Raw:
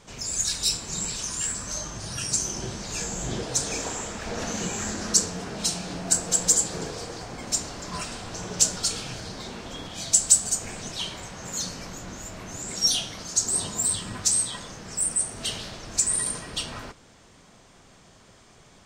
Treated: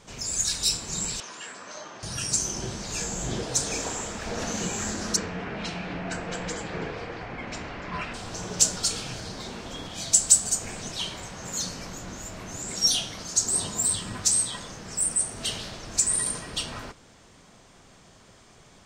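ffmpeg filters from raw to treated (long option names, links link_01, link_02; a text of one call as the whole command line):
ffmpeg -i in.wav -filter_complex "[0:a]asettb=1/sr,asplit=3[link_01][link_02][link_03];[link_01]atrim=end=1.204[link_04];[link_02]atrim=start=1.2:end=2.03,asetpts=PTS-STARTPTS,afade=type=in:duration=0.004:curve=qsin,afade=type=out:start_time=0.826:duration=0.004:curve=qsin,highpass=390,lowpass=3100[link_05];[link_03]atrim=start=2.026[link_06];[link_04][link_05]acrossfade=duration=0.004:curve1=hsin:curve2=qsin[link_07];[link_07][link_06]acrossfade=duration=0.004:curve1=qsin:curve2=hsin,asplit=3[link_08][link_09][link_10];[link_08]afade=type=out:start_time=5.15:duration=0.02[link_11];[link_09]lowpass=frequency=2300:width_type=q:width=2,afade=type=in:start_time=5.15:duration=0.02,afade=type=out:start_time=8.13:duration=0.02[link_12];[link_10]afade=type=in:start_time=8.13:duration=0.02[link_13];[link_11][link_12][link_13]amix=inputs=3:normalize=0" out.wav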